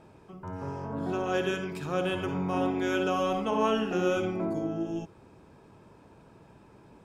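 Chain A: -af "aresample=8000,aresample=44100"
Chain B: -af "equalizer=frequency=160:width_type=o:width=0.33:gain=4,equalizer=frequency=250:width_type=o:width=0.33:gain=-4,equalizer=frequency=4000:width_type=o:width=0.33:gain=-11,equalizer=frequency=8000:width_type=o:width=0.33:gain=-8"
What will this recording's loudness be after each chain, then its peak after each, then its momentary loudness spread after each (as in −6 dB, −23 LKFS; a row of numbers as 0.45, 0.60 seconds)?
−30.0, −30.5 LKFS; −14.5, −14.0 dBFS; 11, 10 LU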